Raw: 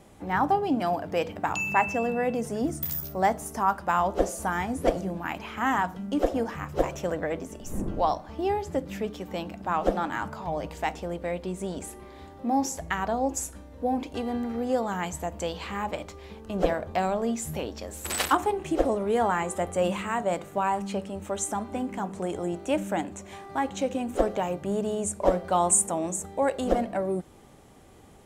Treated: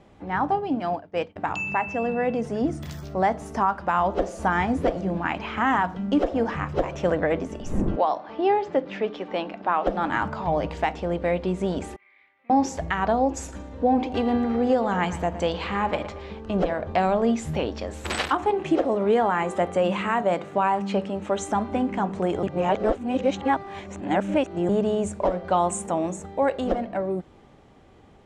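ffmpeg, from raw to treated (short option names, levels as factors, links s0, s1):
-filter_complex "[0:a]asettb=1/sr,asplit=3[s0][s1][s2];[s0]atrim=end=0.514[s3];[s1]atrim=start=0.51:end=1.36,asetpts=PTS-STARTPTS,afade=t=in:d=0.004:c=qsin,afade=t=out:st=0.846:d=0.004:c=qsin,agate=range=0.0224:threshold=0.0447:ratio=3:release=100:detection=peak[s4];[s2]atrim=start=1.356[s5];[s3][s4]acrossfade=d=0.004:c1=hsin:c2=qsin[s6];[s6][s5]acrossfade=d=0.004:c1=qsin:c2=hsin,asettb=1/sr,asplit=3[s7][s8][s9];[s7]atrim=end=7.964[s10];[s8]atrim=start=7.96:end=9.87,asetpts=PTS-STARTPTS,afade=t=in:d=0.004:c=qsin,afade=t=out:st=1.906:d=0.004:c=qsin,highpass=310,lowpass=4400[s11];[s9]atrim=start=9.866[s12];[s10][s11]acrossfade=d=0.004:c1=hsin:c2=qsin[s13];[s13][s12]acrossfade=d=0.004:c1=qsin:c2=hsin,asettb=1/sr,asplit=3[s14][s15][s16];[s14]atrim=end=11.964[s17];[s15]atrim=start=11.96:end=12.5,asetpts=PTS-STARTPTS,afade=t=in:d=0.004:c=qsin,afade=t=out:st=0.536:d=0.004:c=qsin,bandpass=f=2200:t=q:w=11[s18];[s16]atrim=start=12.496[s19];[s17][s18]acrossfade=d=0.004:c1=hsin:c2=qsin[s20];[s20][s19]acrossfade=d=0.004:c1=qsin:c2=hsin,asettb=1/sr,asplit=3[s21][s22][s23];[s21]atrim=end=13.364[s24];[s22]atrim=start=13.36:end=16.3,asetpts=PTS-STARTPTS,afade=t=in:d=0.004:c=qsin,afade=t=out:st=2.936:d=0.004:c=qsin,asplit=2[s25][s26];[s26]adelay=114,lowpass=f=3900:p=1,volume=0.211,asplit=2[s27][s28];[s28]adelay=114,lowpass=f=3900:p=1,volume=0.51,asplit=2[s29][s30];[s30]adelay=114,lowpass=f=3900:p=1,volume=0.51,asplit=2[s31][s32];[s32]adelay=114,lowpass=f=3900:p=1,volume=0.51,asplit=2[s33][s34];[s34]adelay=114,lowpass=f=3900:p=1,volume=0.51[s35];[s25][s27][s29][s31][s33][s35]amix=inputs=6:normalize=0,atrim=end_sample=129654[s36];[s23]atrim=start=16.296[s37];[s24][s36]acrossfade=d=0.004:c1=hsin:c2=qsin[s38];[s38][s37]acrossfade=d=0.004:c1=qsin:c2=hsin,asettb=1/sr,asplit=3[s39][s40][s41];[s39]atrim=end=18.504[s42];[s40]atrim=start=18.5:end=21.41,asetpts=PTS-STARTPTS,afade=t=in:d=0.004:c=qsin,afade=t=out:st=2.906:d=0.004:c=qsin,highpass=130[s43];[s41]atrim=start=21.406[s44];[s42][s43]acrossfade=d=0.004:c1=hsin:c2=qsin[s45];[s45][s44]acrossfade=d=0.004:c1=qsin:c2=hsin,asplit=3[s46][s47][s48];[s46]atrim=end=22.432[s49];[s47]atrim=start=22.428:end=24.692,asetpts=PTS-STARTPTS,areverse[s50];[s48]atrim=start=24.688[s51];[s49][s50]acrossfade=d=0.004:c1=hsin:c2=hsin[s52];[s52][s51]acrossfade=d=0.004:c1=hsin:c2=hsin,lowpass=4000,dynaudnorm=f=440:g=13:m=3.55,alimiter=limit=0.266:level=0:latency=1:release=262"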